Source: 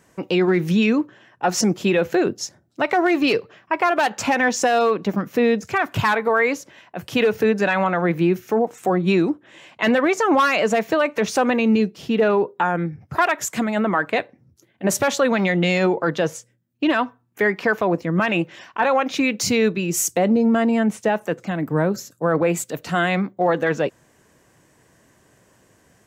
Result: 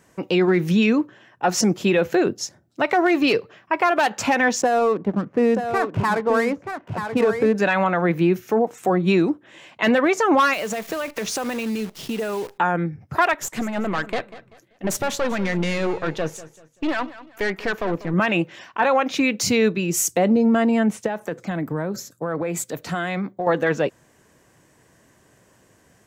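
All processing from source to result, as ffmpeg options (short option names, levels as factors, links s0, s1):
-filter_complex "[0:a]asettb=1/sr,asplit=3[s0][s1][s2];[s0]atrim=end=4.614[s3];[s1]atrim=start=4.61:end=7.55,asetpts=PTS-STARTPTS,afade=t=in:d=0.004:c=qsin,afade=t=out:st=2.936:d=0.004:c=qsin,equalizer=f=3800:t=o:w=1.9:g=-12,adynamicsmooth=sensitivity=6.5:basefreq=1100,aecho=1:1:931:0.422,atrim=end_sample=129654[s4];[s2]atrim=start=7.546[s5];[s3][s4]acrossfade=d=0.004:c1=hsin:c2=qsin[s6];[s6][s5]acrossfade=d=0.004:c1=qsin:c2=hsin,asettb=1/sr,asplit=3[s7][s8][s9];[s7]atrim=end=10.534[s10];[s8]atrim=start=10.53:end=12.58,asetpts=PTS-STARTPTS,afade=t=in:d=0.004:c=qsin,afade=t=out:st=2.046:d=0.004:c=qsin,highshelf=f=2800:g=5.5,acompressor=threshold=0.0708:ratio=5:attack=3.2:release=140:knee=1:detection=peak,acrusher=bits=7:dc=4:mix=0:aa=0.000001[s11];[s9]atrim=start=12.576[s12];[s10][s11]acrossfade=d=0.004:c1=hsin:c2=qsin[s13];[s13][s12]acrossfade=d=0.004:c1=qsin:c2=hsin,asettb=1/sr,asplit=3[s14][s15][s16];[s14]atrim=end=13.334[s17];[s15]atrim=start=13.33:end=18.14,asetpts=PTS-STARTPTS,afade=t=in:d=0.004:c=qsin,afade=t=out:st=4.806:d=0.004:c=qsin,aeval=exprs='(tanh(7.94*val(0)+0.6)-tanh(0.6))/7.94':c=same,aecho=1:1:193|386|579:0.15|0.0494|0.0163,atrim=end_sample=212121[s18];[s16]atrim=start=18.136[s19];[s17][s18]acrossfade=d=0.004:c1=hsin:c2=qsin[s20];[s20][s19]acrossfade=d=0.004:c1=qsin:c2=hsin,asettb=1/sr,asplit=3[s21][s22][s23];[s21]atrim=end=21.064[s24];[s22]atrim=start=21.06:end=23.47,asetpts=PTS-STARTPTS,afade=t=in:d=0.004:c=qsin,afade=t=out:st=2.406:d=0.004:c=qsin,bandreject=f=2800:w=12,acompressor=threshold=0.0891:ratio=6:attack=3.2:release=140:knee=1:detection=peak[s25];[s23]atrim=start=23.466[s26];[s24][s25]acrossfade=d=0.004:c1=hsin:c2=qsin[s27];[s27][s26]acrossfade=d=0.004:c1=qsin:c2=hsin"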